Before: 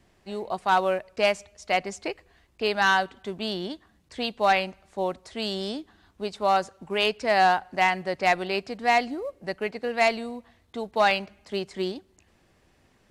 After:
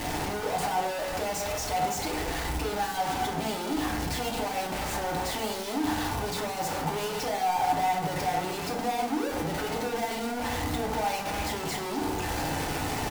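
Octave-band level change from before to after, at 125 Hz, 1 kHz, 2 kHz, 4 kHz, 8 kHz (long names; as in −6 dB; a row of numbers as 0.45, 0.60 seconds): +7.0, −3.0, −7.0, −3.0, +9.5 decibels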